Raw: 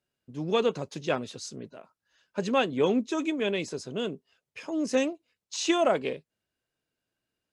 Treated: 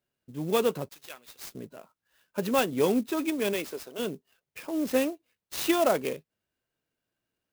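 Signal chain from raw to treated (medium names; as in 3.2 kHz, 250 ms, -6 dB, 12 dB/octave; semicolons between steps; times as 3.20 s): 0.89–1.55 s: differentiator; 3.53–3.98 s: high-pass 230 Hz -> 560 Hz 12 dB/octave; sampling jitter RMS 0.038 ms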